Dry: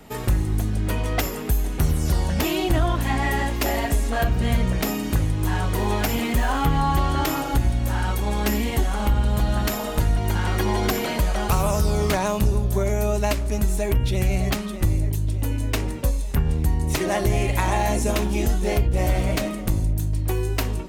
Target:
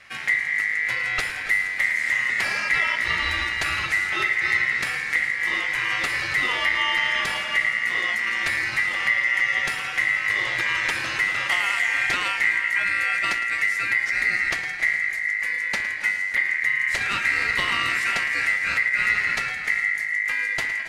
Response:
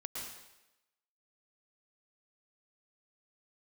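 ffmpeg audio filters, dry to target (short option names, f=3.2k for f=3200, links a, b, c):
-filter_complex "[0:a]aeval=exprs='val(0)*sin(2*PI*2000*n/s)':c=same,lowpass=7.9k,asplit=2[a][b];[1:a]atrim=start_sample=2205,asetrate=29547,aresample=44100,adelay=110[c];[b][c]afir=irnorm=-1:irlink=0,volume=-11dB[d];[a][d]amix=inputs=2:normalize=0"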